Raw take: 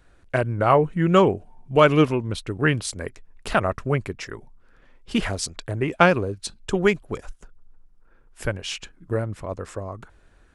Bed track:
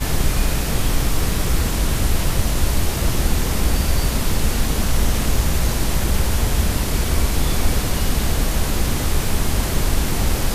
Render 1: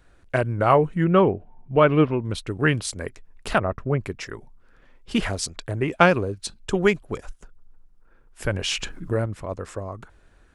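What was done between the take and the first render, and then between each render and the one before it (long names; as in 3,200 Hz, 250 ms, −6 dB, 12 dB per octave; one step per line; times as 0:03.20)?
0:01.04–0:02.25: high-frequency loss of the air 370 metres
0:03.58–0:04.04: low-pass filter 1,000 Hz 6 dB per octave
0:08.46–0:09.26: envelope flattener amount 50%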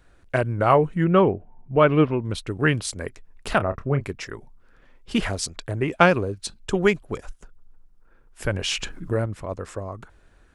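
0:01.35–0:01.80: high-frequency loss of the air 310 metres
0:03.57–0:04.11: double-tracking delay 29 ms −11 dB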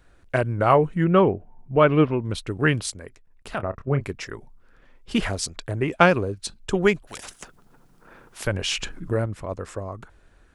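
0:02.90–0:03.89: output level in coarse steps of 13 dB
0:07.07–0:08.47: every bin compressed towards the loudest bin 4 to 1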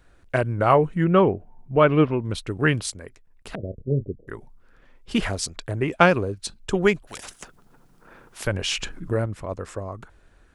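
0:03.55–0:04.28: Butterworth low-pass 540 Hz 48 dB per octave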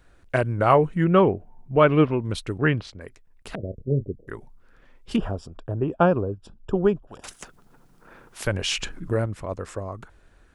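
0:02.58–0:03.01: high-frequency loss of the air 250 metres
0:05.16–0:07.24: moving average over 21 samples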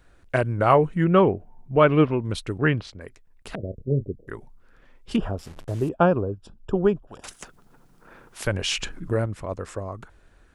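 0:05.38–0:05.89: linear delta modulator 64 kbit/s, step −40.5 dBFS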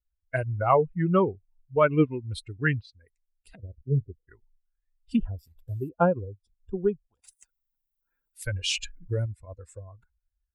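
spectral dynamics exaggerated over time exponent 2
speech leveller within 3 dB 2 s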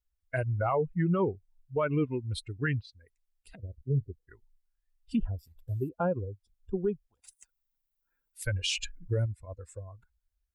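brickwall limiter −20 dBFS, peak gain reduction 11 dB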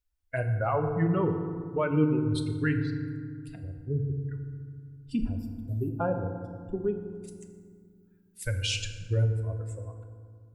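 feedback delay network reverb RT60 2 s, low-frequency decay 1.55×, high-frequency decay 0.45×, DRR 5 dB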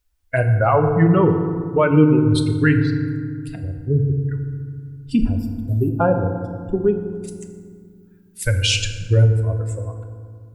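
level +11.5 dB
brickwall limiter −3 dBFS, peak gain reduction 1.5 dB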